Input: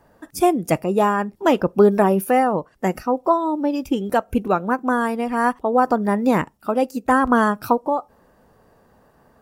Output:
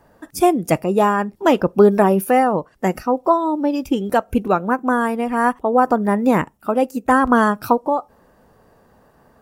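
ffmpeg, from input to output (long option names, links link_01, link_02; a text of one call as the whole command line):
ffmpeg -i in.wav -filter_complex "[0:a]asettb=1/sr,asplit=3[link_01][link_02][link_03];[link_01]atrim=end=4.574[link_04];[link_02]atrim=start=4.57:end=7.09,asetpts=PTS-STARTPTS,afade=type=in:duration=0.004:curve=qsin,afade=type=out:start_time=2.516:duration=0.004:curve=qsin,equalizer=frequency=4600:width=2:gain=-6[link_05];[link_03]atrim=start=7.086[link_06];[link_04][link_05]acrossfade=duration=0.004:curve1=hsin:curve2=qsin[link_07];[link_07][link_06]acrossfade=duration=0.004:curve1=qsin:curve2=hsin,volume=2dB" out.wav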